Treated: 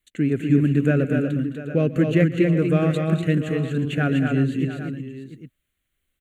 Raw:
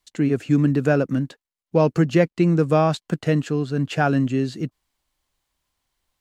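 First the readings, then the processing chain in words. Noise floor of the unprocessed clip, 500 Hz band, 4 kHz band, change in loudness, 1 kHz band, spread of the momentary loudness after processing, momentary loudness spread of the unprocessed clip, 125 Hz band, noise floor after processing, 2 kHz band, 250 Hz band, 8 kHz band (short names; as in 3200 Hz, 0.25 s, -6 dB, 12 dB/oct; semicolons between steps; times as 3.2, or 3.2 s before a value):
under -85 dBFS, -2.5 dB, -2.0 dB, -0.5 dB, -8.5 dB, 11 LU, 8 LU, +1.0 dB, -77 dBFS, 0.0 dB, +0.5 dB, n/a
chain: fixed phaser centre 2200 Hz, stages 4; tapped delay 0.133/0.214/0.245/0.36/0.694/0.804 s -19/-13.5/-4.5/-13/-14/-14 dB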